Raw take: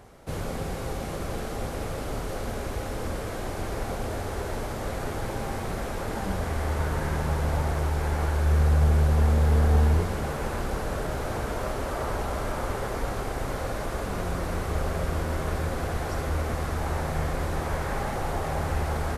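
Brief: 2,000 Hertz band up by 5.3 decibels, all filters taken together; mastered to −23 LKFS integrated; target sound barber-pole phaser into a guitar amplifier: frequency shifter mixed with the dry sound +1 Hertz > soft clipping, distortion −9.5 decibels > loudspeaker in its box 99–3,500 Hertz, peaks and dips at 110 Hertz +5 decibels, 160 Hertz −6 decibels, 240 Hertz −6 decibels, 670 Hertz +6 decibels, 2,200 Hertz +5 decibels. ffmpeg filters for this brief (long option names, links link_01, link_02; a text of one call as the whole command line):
ffmpeg -i in.wav -filter_complex "[0:a]equalizer=frequency=2000:width_type=o:gain=4.5,asplit=2[link_01][link_02];[link_02]afreqshift=1[link_03];[link_01][link_03]amix=inputs=2:normalize=1,asoftclip=threshold=-27.5dB,highpass=99,equalizer=frequency=110:width_type=q:width=4:gain=5,equalizer=frequency=160:width_type=q:width=4:gain=-6,equalizer=frequency=240:width_type=q:width=4:gain=-6,equalizer=frequency=670:width_type=q:width=4:gain=6,equalizer=frequency=2200:width_type=q:width=4:gain=5,lowpass=frequency=3500:width=0.5412,lowpass=frequency=3500:width=1.3066,volume=12.5dB" out.wav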